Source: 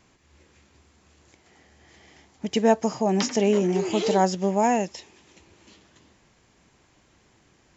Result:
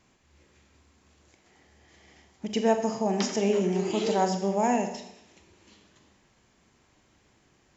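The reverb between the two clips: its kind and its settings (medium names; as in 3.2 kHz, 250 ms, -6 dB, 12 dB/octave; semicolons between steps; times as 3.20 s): Schroeder reverb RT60 0.79 s, combs from 29 ms, DRR 6 dB; trim -4.5 dB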